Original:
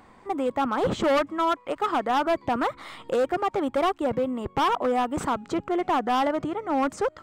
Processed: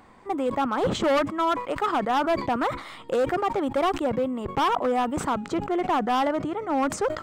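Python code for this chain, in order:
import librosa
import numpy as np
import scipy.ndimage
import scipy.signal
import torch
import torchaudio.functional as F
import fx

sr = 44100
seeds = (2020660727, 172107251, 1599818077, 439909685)

y = fx.sustainer(x, sr, db_per_s=110.0)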